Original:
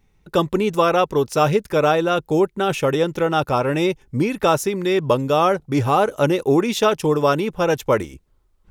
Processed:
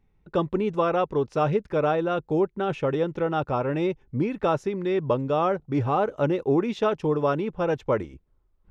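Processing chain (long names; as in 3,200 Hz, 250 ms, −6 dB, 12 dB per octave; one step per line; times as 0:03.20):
head-to-tape spacing loss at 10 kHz 26 dB
level −4.5 dB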